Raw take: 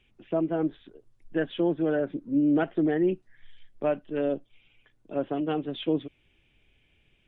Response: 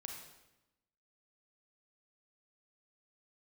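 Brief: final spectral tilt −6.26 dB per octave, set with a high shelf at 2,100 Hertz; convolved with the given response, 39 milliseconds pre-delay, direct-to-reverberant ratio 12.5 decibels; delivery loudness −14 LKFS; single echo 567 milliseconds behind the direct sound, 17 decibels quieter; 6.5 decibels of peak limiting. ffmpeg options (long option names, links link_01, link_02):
-filter_complex "[0:a]highshelf=frequency=2100:gain=-4,alimiter=limit=-22dB:level=0:latency=1,aecho=1:1:567:0.141,asplit=2[link_01][link_02];[1:a]atrim=start_sample=2205,adelay=39[link_03];[link_02][link_03]afir=irnorm=-1:irlink=0,volume=-9.5dB[link_04];[link_01][link_04]amix=inputs=2:normalize=0,volume=18dB"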